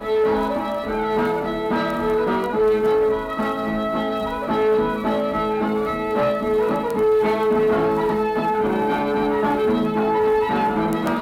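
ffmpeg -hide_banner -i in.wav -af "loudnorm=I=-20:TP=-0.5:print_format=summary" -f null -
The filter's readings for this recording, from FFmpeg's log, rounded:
Input Integrated:    -20.6 LUFS
Input True Peak:      -8.8 dBTP
Input LRA:             1.5 LU
Input Threshold:     -30.6 LUFS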